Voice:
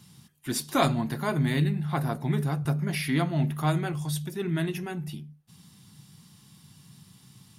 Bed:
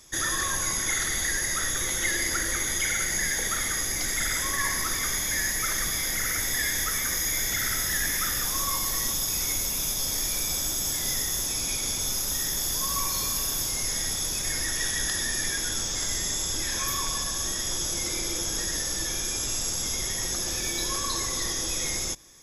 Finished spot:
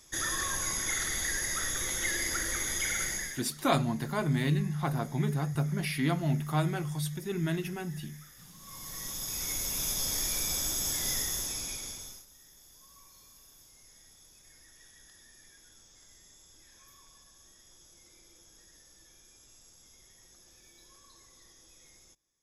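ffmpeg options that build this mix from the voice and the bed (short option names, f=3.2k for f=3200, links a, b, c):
-filter_complex "[0:a]adelay=2900,volume=-3dB[a];[1:a]volume=18.5dB,afade=t=out:st=3.05:d=0.4:silence=0.0794328,afade=t=in:st=8.59:d=1.33:silence=0.0668344,afade=t=out:st=11.16:d=1.1:silence=0.0530884[b];[a][b]amix=inputs=2:normalize=0"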